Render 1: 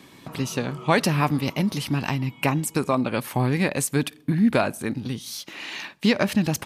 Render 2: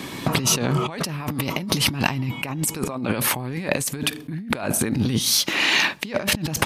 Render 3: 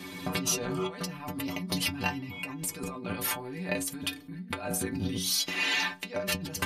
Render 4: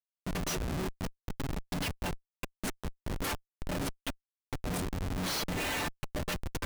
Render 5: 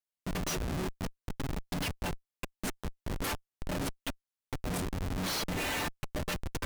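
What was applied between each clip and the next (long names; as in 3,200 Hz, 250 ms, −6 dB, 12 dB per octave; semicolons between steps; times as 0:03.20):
compressor whose output falls as the input rises −33 dBFS, ratio −1; level +8 dB
stiff-string resonator 89 Hz, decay 0.3 s, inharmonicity 0.008
noise that follows the level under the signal 33 dB; comparator with hysteresis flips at −28.5 dBFS
pitch vibrato 3.3 Hz 13 cents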